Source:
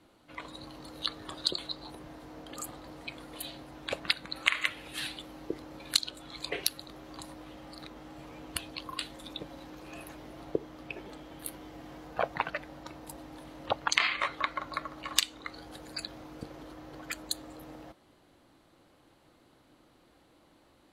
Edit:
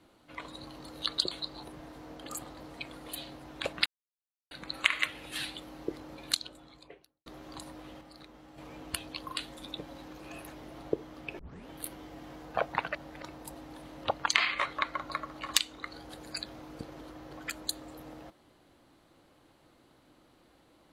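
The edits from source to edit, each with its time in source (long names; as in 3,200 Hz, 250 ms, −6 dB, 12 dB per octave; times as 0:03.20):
0:01.18–0:01.45: remove
0:04.13: splice in silence 0.65 s
0:05.67–0:06.88: fade out and dull
0:07.63–0:08.20: clip gain −6 dB
0:11.01: tape start 0.30 s
0:12.57–0:12.84: reverse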